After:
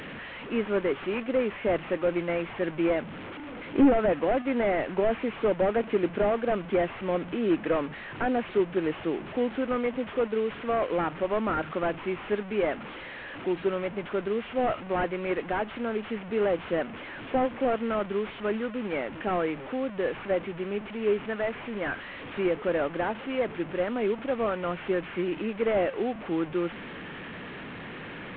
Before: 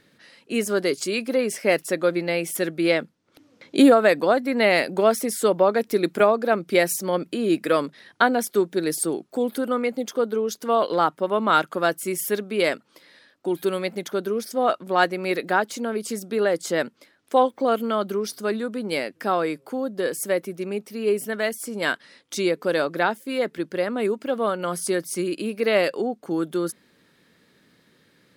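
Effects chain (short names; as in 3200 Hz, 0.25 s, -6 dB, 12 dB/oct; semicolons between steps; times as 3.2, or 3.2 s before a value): delta modulation 16 kbps, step -30 dBFS; gain -3.5 dB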